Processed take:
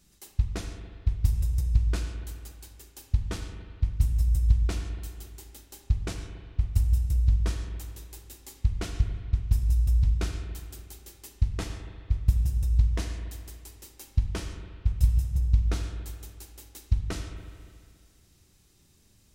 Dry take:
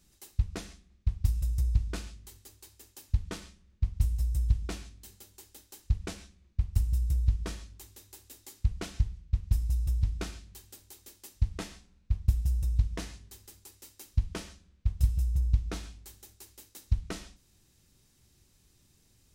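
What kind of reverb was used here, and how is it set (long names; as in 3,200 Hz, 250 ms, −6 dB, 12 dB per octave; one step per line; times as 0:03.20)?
spring reverb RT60 2.1 s, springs 35/40 ms, chirp 60 ms, DRR 5.5 dB
level +2.5 dB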